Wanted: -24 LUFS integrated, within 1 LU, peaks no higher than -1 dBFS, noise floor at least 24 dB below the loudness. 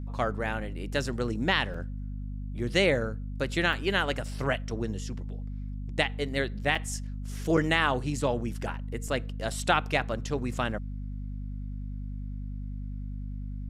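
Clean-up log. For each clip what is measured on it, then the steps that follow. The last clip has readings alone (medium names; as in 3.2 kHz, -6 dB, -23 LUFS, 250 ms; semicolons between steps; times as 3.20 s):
dropouts 5; longest dropout 4.2 ms; hum 50 Hz; highest harmonic 250 Hz; hum level -33 dBFS; loudness -30.5 LUFS; peak level -9.5 dBFS; loudness target -24.0 LUFS
-> interpolate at 1.74/3.73/6.75/7.57/9.08 s, 4.2 ms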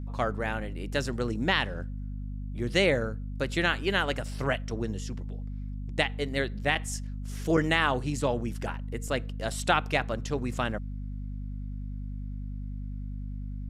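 dropouts 0; hum 50 Hz; highest harmonic 250 Hz; hum level -33 dBFS
-> de-hum 50 Hz, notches 5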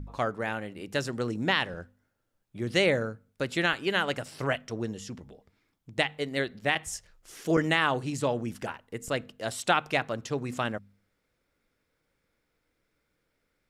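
hum not found; loudness -29.5 LUFS; peak level -10.0 dBFS; loudness target -24.0 LUFS
-> trim +5.5 dB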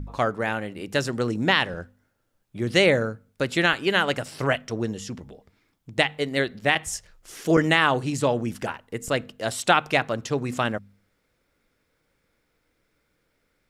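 loudness -24.0 LUFS; peak level -4.5 dBFS; noise floor -72 dBFS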